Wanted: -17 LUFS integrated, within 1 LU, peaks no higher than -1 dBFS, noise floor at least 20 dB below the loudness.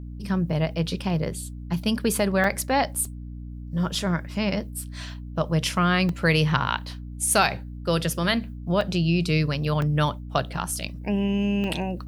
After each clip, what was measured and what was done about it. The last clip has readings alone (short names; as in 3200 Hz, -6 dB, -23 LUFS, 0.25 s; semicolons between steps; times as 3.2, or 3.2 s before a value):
dropouts 8; longest dropout 2.2 ms; hum 60 Hz; harmonics up to 300 Hz; hum level -34 dBFS; loudness -25.0 LUFS; peak -4.5 dBFS; loudness target -17.0 LUFS
-> interpolate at 2.44/3.05/3.95/6.09/8.81/9.82/10.84/11.64, 2.2 ms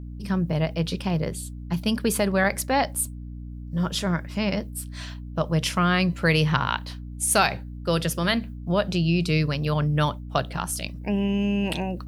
dropouts 0; hum 60 Hz; harmonics up to 300 Hz; hum level -34 dBFS
-> notches 60/120/180/240/300 Hz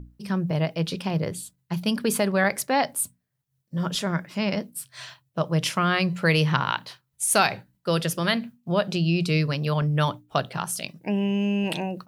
hum none; loudness -25.0 LUFS; peak -4.5 dBFS; loudness target -17.0 LUFS
-> gain +8 dB; limiter -1 dBFS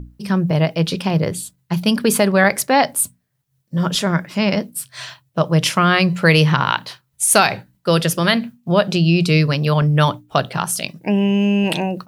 loudness -17.5 LUFS; peak -1.0 dBFS; noise floor -68 dBFS